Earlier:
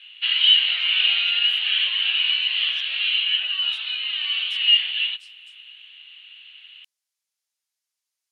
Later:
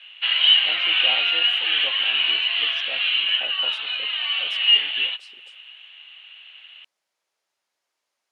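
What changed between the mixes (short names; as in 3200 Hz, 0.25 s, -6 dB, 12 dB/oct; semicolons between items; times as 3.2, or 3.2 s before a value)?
background -7.5 dB; master: remove differentiator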